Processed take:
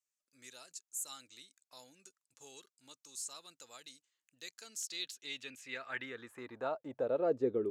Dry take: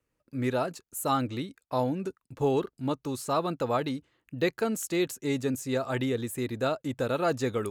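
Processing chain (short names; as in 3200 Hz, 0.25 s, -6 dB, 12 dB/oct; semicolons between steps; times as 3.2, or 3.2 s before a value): dynamic EQ 880 Hz, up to -6 dB, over -39 dBFS, Q 0.72; band-pass sweep 7000 Hz -> 370 Hz, 4.51–7.58; gain +2.5 dB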